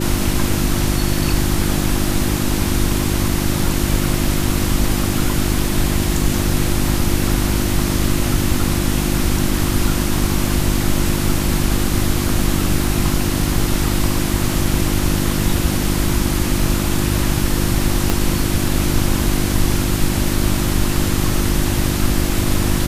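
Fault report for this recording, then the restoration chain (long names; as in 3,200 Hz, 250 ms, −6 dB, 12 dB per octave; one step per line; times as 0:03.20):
mains hum 50 Hz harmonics 7 −21 dBFS
0:18.10: click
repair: click removal
hum removal 50 Hz, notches 7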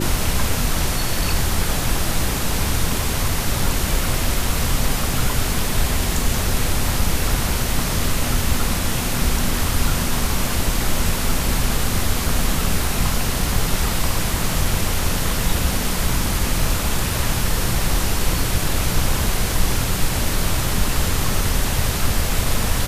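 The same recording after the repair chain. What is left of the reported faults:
0:18.10: click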